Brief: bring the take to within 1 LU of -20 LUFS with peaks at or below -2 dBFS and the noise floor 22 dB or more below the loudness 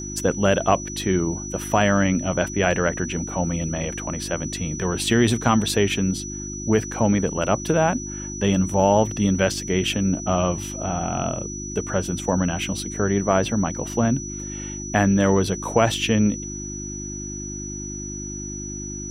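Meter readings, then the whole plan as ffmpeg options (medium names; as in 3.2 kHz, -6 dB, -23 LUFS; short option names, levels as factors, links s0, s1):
hum 50 Hz; highest harmonic 350 Hz; hum level -32 dBFS; steady tone 5.9 kHz; tone level -33 dBFS; loudness -23.0 LUFS; peak level -3.0 dBFS; loudness target -20.0 LUFS
-> -af "bandreject=f=50:t=h:w=4,bandreject=f=100:t=h:w=4,bandreject=f=150:t=h:w=4,bandreject=f=200:t=h:w=4,bandreject=f=250:t=h:w=4,bandreject=f=300:t=h:w=4,bandreject=f=350:t=h:w=4"
-af "bandreject=f=5900:w=30"
-af "volume=1.41,alimiter=limit=0.794:level=0:latency=1"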